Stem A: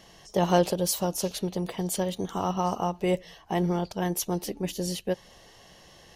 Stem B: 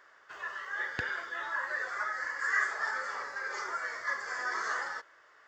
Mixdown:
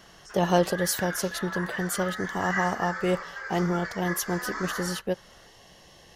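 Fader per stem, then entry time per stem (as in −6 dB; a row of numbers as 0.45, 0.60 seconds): 0.0, −0.5 decibels; 0.00, 0.00 seconds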